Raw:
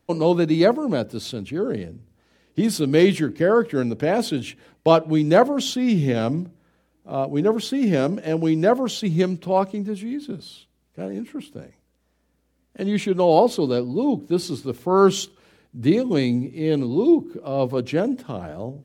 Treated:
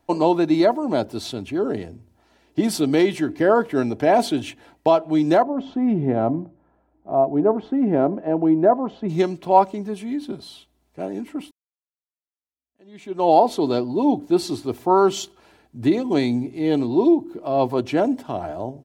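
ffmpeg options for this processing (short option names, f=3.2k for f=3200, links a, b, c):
-filter_complex "[0:a]asplit=3[a][b][c];[a]afade=t=out:st=5.42:d=0.02[d];[b]lowpass=1.1k,afade=t=in:st=5.42:d=0.02,afade=t=out:st=9.08:d=0.02[e];[c]afade=t=in:st=9.08:d=0.02[f];[d][e][f]amix=inputs=3:normalize=0,asplit=2[g][h];[g]atrim=end=11.51,asetpts=PTS-STARTPTS,afade=t=out:st=11.506:d=0.004:c=hsin[i];[h]atrim=start=11.51,asetpts=PTS-STARTPTS,afade=t=in:d=1.8:c=exp[j];[i][j]concat=n=2:v=0:a=1,aecho=1:1:3:0.44,alimiter=limit=-9dB:level=0:latency=1:release=358,equalizer=f=820:w=2.6:g=10.5"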